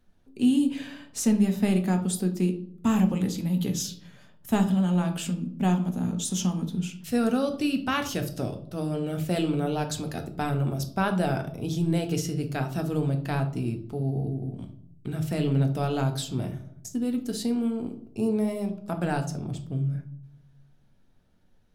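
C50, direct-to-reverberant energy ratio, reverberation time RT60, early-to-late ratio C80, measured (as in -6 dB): 11.5 dB, 5.0 dB, 0.65 s, 16.0 dB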